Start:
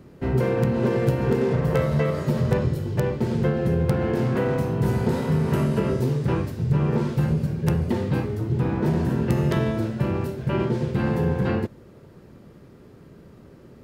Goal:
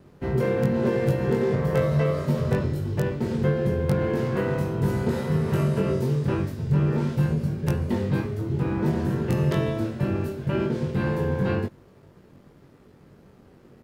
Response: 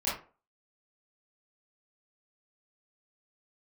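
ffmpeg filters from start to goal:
-filter_complex "[0:a]aeval=exprs='sgn(val(0))*max(abs(val(0))-0.00188,0)':c=same,asplit=2[a][b];[b]adelay=21,volume=-3.5dB[c];[a][c]amix=inputs=2:normalize=0,volume=-3dB"

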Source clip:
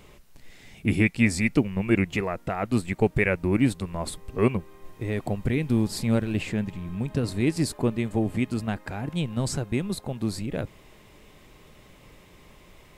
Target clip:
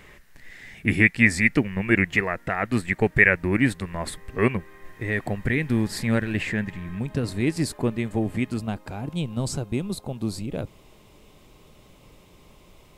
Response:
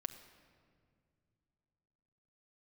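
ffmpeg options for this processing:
-af "asetnsamples=n=441:p=0,asendcmd='6.99 equalizer g 4;8.58 equalizer g -8',equalizer=f=1.8k:t=o:w=0.57:g=14.5"

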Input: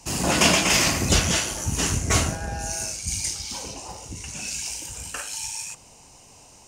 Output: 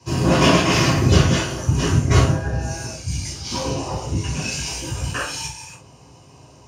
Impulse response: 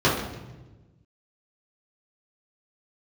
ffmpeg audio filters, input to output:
-filter_complex "[0:a]asplit=3[a][b][c];[a]afade=t=out:st=3.43:d=0.02[d];[b]acontrast=85,afade=t=in:st=3.43:d=0.02,afade=t=out:st=5.45:d=0.02[e];[c]afade=t=in:st=5.45:d=0.02[f];[d][e][f]amix=inputs=3:normalize=0[g];[1:a]atrim=start_sample=2205,atrim=end_sample=3528[h];[g][h]afir=irnorm=-1:irlink=0,volume=-15dB"

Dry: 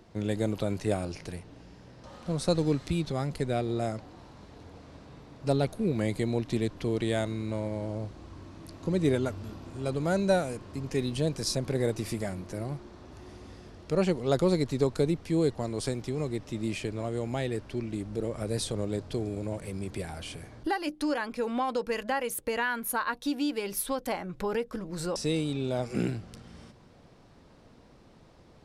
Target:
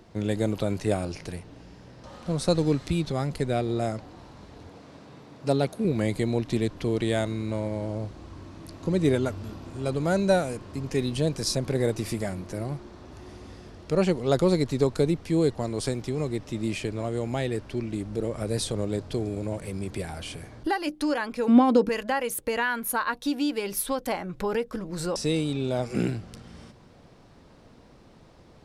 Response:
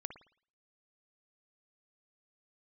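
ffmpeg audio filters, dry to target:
-filter_complex "[0:a]asettb=1/sr,asplit=3[a][b][c];[a]atrim=end=4.694[d];[b]atrim=start=4.69:end=5.85,asetpts=PTS-STARTPTS,afade=t=in:d=0.004:c=qsin,afade=t=out:st=1.156:d=0.004:c=qsin,highpass=130[e];[c]atrim=start=5.846[f];[d][e]acrossfade=d=0.004:c1=hsin:c2=qsin[g];[g][f]acrossfade=d=0.004:c1=qsin:c2=hsin,asettb=1/sr,asplit=3[h][i][j];[h]atrim=end=21.484[k];[i]atrim=start=21.48:end=21.89,asetpts=PTS-STARTPTS,afade=t=in:d=0.004:c=qsin,afade=t=out:st=0.406:d=0.004:c=qsin,equalizer=f=260:w=0.79:g=14[l];[j]atrim=start=21.886[m];[k][l]acrossfade=d=0.004:c1=hsin:c2=qsin[n];[n][m]acrossfade=d=0.004:c1=qsin:c2=hsin,volume=3dB"

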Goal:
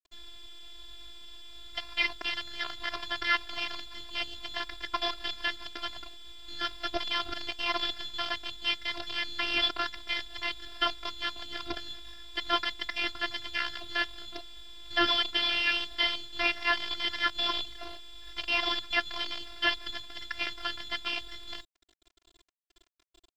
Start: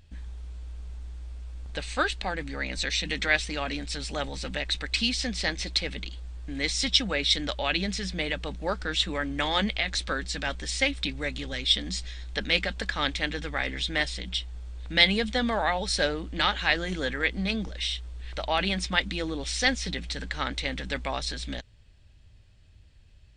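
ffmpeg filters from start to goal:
-af "lowpass=f=3.1k:t=q:w=0.5098,lowpass=f=3.1k:t=q:w=0.6013,lowpass=f=3.1k:t=q:w=0.9,lowpass=f=3.1k:t=q:w=2.563,afreqshift=-3600,aresample=11025,acrusher=bits=5:dc=4:mix=0:aa=0.000001,aresample=44100,aeval=exprs='sgn(val(0))*max(abs(val(0))-0.00251,0)':c=same,afftfilt=real='hypot(re,im)*cos(PI*b)':imag='0':win_size=512:overlap=0.75,volume=1dB"

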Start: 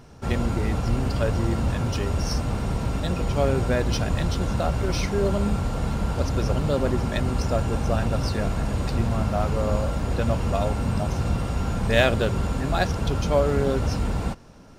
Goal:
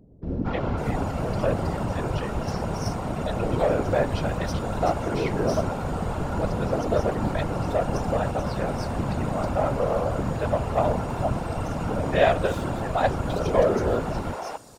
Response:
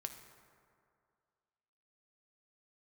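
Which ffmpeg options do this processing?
-filter_complex "[0:a]highpass=f=51:w=0.5412,highpass=f=51:w=1.3066,equalizer=f=640:w=0.73:g=9,asplit=2[a][b];[b]aeval=exprs='0.251*(abs(mod(val(0)/0.251+3,4)-2)-1)':c=same,volume=-10dB[c];[a][c]amix=inputs=2:normalize=0,acrossover=split=390|4600[d][e][f];[e]adelay=230[g];[f]adelay=550[h];[d][g][h]amix=inputs=3:normalize=0,asoftclip=type=hard:threshold=-3.5dB,afftfilt=real='hypot(re,im)*cos(2*PI*random(0))':imag='hypot(re,im)*sin(2*PI*random(1))':win_size=512:overlap=0.75"

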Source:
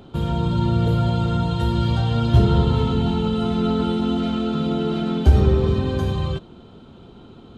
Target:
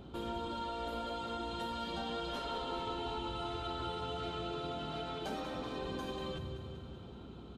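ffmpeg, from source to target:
-filter_complex "[0:a]highpass=f=58:p=1,asplit=2[a][b];[b]aecho=0:1:191|382|573|764|955|1146|1337:0.299|0.173|0.1|0.0582|0.0338|0.0196|0.0114[c];[a][c]amix=inputs=2:normalize=0,afftfilt=real='re*lt(hypot(re,im),0.355)':imag='im*lt(hypot(re,im),0.355)':win_size=1024:overlap=0.75,acompressor=threshold=-35dB:ratio=1.5,aeval=exprs='val(0)+0.00398*(sin(2*PI*60*n/s)+sin(2*PI*2*60*n/s)/2+sin(2*PI*3*60*n/s)/3+sin(2*PI*4*60*n/s)/4+sin(2*PI*5*60*n/s)/5)':c=same,volume=-7dB"

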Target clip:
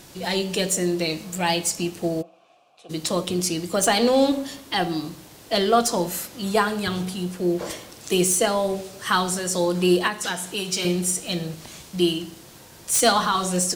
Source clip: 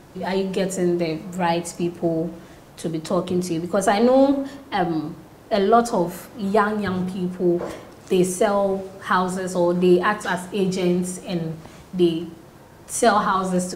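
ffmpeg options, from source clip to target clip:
-filter_complex "[0:a]asettb=1/sr,asplit=3[a][b][c];[a]atrim=end=10.074[d];[b]atrim=start=10.07:end=10.85,asetpts=PTS-STARTPTS,afade=t=in:d=0.004:c=qsin,afade=t=out:st=0.776:d=0.004:c=qsin,acrossover=split=120|830[e][f][g];[e]acompressor=threshold=-54dB:ratio=4[h];[f]acompressor=threshold=-28dB:ratio=4[i];[g]acompressor=threshold=-27dB:ratio=4[j];[h][i][j]amix=inputs=3:normalize=0[k];[c]atrim=start=10.846[l];[d][k]acrossfade=d=0.004:c1=hsin:c2=qsin[m];[m][l]acrossfade=d=0.004:c1=qsin:c2=hsin,acrossover=split=2700[n][o];[o]aeval=exprs='0.224*sin(PI/2*3.16*val(0)/0.224)':c=same[p];[n][p]amix=inputs=2:normalize=0,asplit=3[q][r][s];[q]afade=t=out:st=2.21:d=0.02[t];[r]asplit=3[u][v][w];[u]bandpass=f=730:t=q:w=8,volume=0dB[x];[v]bandpass=f=1.09k:t=q:w=8,volume=-6dB[y];[w]bandpass=f=2.44k:t=q:w=8,volume=-9dB[z];[x][y][z]amix=inputs=3:normalize=0,afade=t=in:st=2.21:d=0.02,afade=t=out:st=2.89:d=0.02[aa];[s]afade=t=in:st=2.89:d=0.02[ab];[t][aa][ab]amix=inputs=3:normalize=0,volume=-3dB"

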